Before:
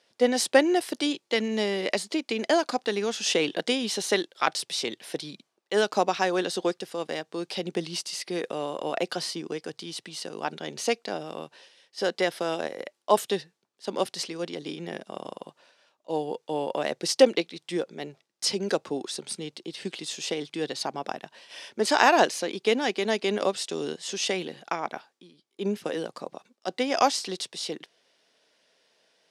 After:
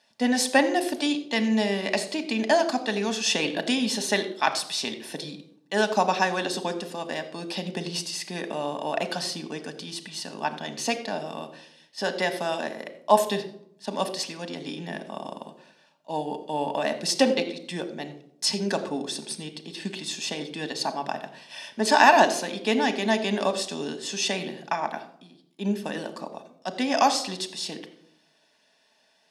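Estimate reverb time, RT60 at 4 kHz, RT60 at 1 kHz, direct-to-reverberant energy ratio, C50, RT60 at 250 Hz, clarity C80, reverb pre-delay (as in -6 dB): 0.70 s, 0.40 s, 0.65 s, 7.0 dB, 12.5 dB, 0.95 s, 14.5 dB, 3 ms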